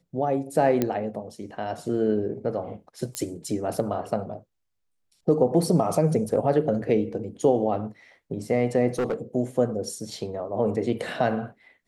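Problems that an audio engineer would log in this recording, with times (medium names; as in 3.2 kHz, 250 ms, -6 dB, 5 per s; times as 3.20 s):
0.82 s: pop -10 dBFS
3.15 s: pop -13 dBFS
8.98–9.14 s: clipped -21.5 dBFS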